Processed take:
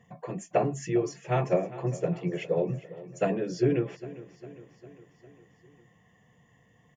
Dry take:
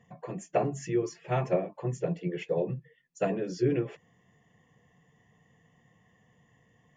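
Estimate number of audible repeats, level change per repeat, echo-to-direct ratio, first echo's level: 4, -4.5 dB, -15.0 dB, -17.0 dB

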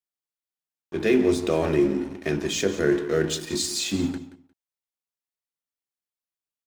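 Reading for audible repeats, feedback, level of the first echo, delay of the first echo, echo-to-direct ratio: 2, 16%, -15.0 dB, 177 ms, -15.0 dB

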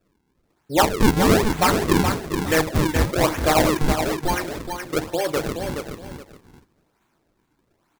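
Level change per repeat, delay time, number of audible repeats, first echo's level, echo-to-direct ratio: -12.5 dB, 422 ms, 2, -6.5 dB, -6.5 dB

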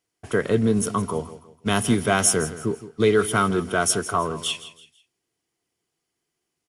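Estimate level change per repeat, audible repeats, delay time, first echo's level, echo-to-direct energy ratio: -9.0 dB, 3, 164 ms, -15.0 dB, -14.5 dB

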